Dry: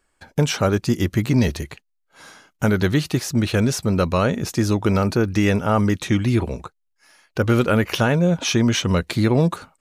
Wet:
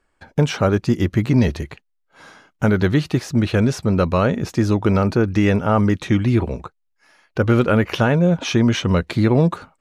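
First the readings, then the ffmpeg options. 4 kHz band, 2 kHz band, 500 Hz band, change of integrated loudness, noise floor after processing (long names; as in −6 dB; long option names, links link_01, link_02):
−2.5 dB, +0.5 dB, +2.0 dB, +1.5 dB, −69 dBFS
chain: -af "lowpass=frequency=2600:poles=1,volume=2dB"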